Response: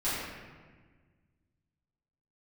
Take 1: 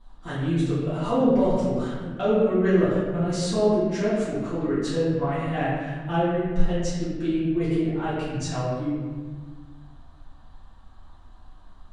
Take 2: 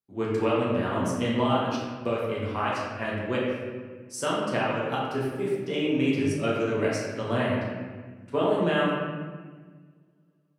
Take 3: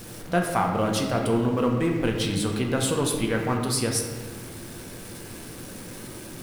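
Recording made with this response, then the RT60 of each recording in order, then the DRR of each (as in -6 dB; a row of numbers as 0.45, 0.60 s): 1; 1.5, 1.5, 1.5 s; -13.5, -6.5, 1.0 dB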